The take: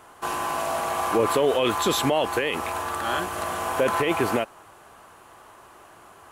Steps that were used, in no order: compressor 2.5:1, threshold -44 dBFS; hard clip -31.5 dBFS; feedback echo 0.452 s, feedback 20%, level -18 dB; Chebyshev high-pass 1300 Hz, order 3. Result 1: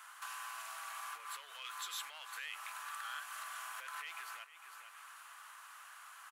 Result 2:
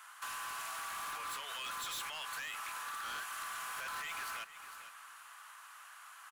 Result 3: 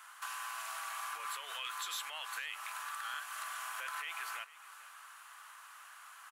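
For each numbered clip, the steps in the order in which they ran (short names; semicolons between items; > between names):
feedback echo > compressor > hard clip > Chebyshev high-pass; Chebyshev high-pass > hard clip > feedback echo > compressor; Chebyshev high-pass > compressor > feedback echo > hard clip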